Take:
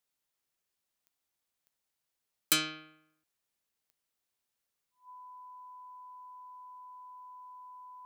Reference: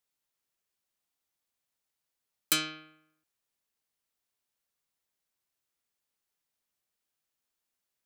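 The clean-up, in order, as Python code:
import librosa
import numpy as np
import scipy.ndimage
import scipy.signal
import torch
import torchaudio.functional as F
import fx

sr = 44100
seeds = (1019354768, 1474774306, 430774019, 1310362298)

y = fx.fix_declick_ar(x, sr, threshold=10.0)
y = fx.notch(y, sr, hz=1000.0, q=30.0)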